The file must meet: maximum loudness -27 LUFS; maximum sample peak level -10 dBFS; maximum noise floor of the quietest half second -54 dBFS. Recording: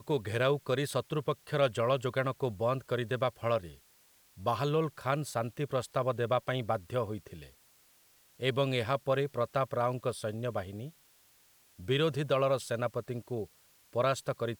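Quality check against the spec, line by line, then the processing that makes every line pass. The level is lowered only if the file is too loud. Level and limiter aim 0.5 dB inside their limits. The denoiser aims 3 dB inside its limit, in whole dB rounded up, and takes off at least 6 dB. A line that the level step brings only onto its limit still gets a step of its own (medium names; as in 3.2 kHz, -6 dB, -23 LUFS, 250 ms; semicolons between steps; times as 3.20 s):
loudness -32.5 LUFS: pass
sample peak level -15.0 dBFS: pass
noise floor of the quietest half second -64 dBFS: pass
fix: none needed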